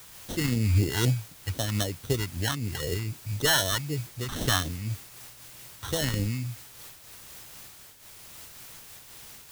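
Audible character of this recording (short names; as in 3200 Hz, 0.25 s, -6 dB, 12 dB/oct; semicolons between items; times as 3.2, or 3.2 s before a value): aliases and images of a low sample rate 2400 Hz, jitter 0%; phasing stages 2, 3.9 Hz, lowest notch 490–1200 Hz; a quantiser's noise floor 8-bit, dither triangular; noise-modulated level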